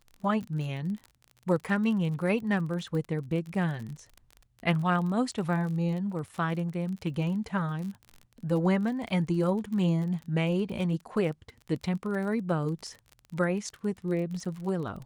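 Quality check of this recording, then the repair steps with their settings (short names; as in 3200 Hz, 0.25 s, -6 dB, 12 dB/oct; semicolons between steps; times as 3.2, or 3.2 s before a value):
crackle 34/s -36 dBFS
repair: de-click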